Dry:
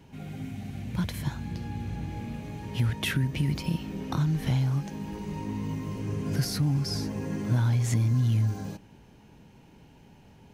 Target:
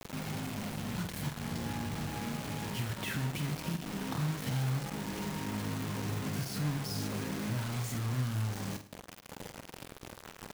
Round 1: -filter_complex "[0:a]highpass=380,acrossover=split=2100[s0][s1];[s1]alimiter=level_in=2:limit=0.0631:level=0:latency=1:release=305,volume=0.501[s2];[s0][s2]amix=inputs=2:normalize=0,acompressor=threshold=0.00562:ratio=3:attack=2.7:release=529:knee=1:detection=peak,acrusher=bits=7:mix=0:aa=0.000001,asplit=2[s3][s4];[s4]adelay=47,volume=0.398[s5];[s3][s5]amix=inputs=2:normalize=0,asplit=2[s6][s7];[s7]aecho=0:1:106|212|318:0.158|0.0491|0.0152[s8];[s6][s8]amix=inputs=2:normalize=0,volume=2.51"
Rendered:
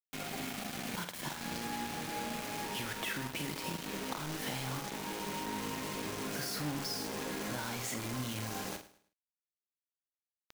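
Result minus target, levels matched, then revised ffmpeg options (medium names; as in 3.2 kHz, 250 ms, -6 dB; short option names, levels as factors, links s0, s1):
125 Hz band -8.5 dB
-filter_complex "[0:a]highpass=96,acrossover=split=2100[s0][s1];[s1]alimiter=level_in=2:limit=0.0631:level=0:latency=1:release=305,volume=0.501[s2];[s0][s2]amix=inputs=2:normalize=0,acompressor=threshold=0.00562:ratio=3:attack=2.7:release=529:knee=1:detection=peak,acrusher=bits=7:mix=0:aa=0.000001,asplit=2[s3][s4];[s4]adelay=47,volume=0.398[s5];[s3][s5]amix=inputs=2:normalize=0,asplit=2[s6][s7];[s7]aecho=0:1:106|212|318:0.158|0.0491|0.0152[s8];[s6][s8]amix=inputs=2:normalize=0,volume=2.51"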